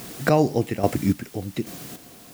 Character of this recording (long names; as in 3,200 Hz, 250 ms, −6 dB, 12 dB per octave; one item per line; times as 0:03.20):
a quantiser's noise floor 8 bits, dither triangular
chopped level 1.2 Hz, depth 60%, duty 35%